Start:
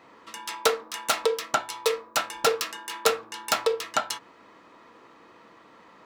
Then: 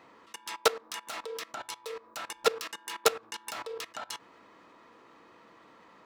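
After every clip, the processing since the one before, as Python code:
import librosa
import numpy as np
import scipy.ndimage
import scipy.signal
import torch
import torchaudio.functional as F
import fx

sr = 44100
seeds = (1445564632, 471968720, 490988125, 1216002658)

y = fx.level_steps(x, sr, step_db=19)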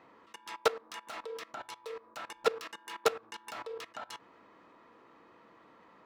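y = fx.high_shelf(x, sr, hz=3900.0, db=-10.5)
y = F.gain(torch.from_numpy(y), -2.0).numpy()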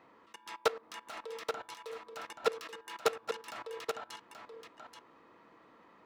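y = x + 10.0 ** (-7.0 / 20.0) * np.pad(x, (int(830 * sr / 1000.0), 0))[:len(x)]
y = F.gain(torch.from_numpy(y), -2.0).numpy()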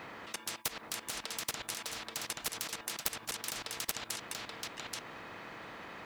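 y = fx.spectral_comp(x, sr, ratio=10.0)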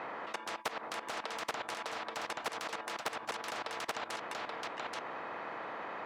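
y = fx.bandpass_q(x, sr, hz=790.0, q=0.87)
y = F.gain(torch.from_numpy(y), 8.5).numpy()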